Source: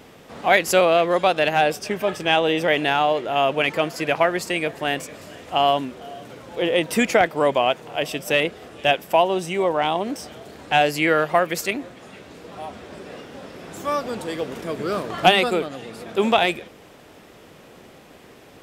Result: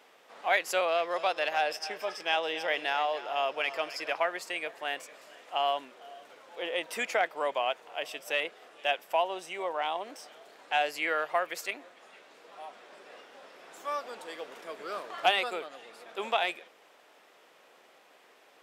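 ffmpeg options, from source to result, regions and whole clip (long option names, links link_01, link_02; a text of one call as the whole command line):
ffmpeg -i in.wav -filter_complex "[0:a]asettb=1/sr,asplit=3[link_01][link_02][link_03];[link_01]atrim=end=0.884[link_04];[link_02]atrim=start=0.88:end=4.17,asetpts=PTS-STARTPTS,afade=type=in:duration=0.004:curve=qsin,afade=type=out:start_time=3.286:duration=0.004:curve=qsin,equalizer=frequency=5200:width=6.9:gain=13,aecho=1:1:279:0.188,atrim=end_sample=145089[link_05];[link_03]atrim=start=4.166[link_06];[link_04][link_05]acrossfade=duration=0.004:curve1=hsin:curve2=qsin[link_07];[link_07][link_06]acrossfade=duration=0.004:curve1=qsin:curve2=hsin,highpass=640,highshelf=frequency=5100:gain=-5.5,volume=-8dB" out.wav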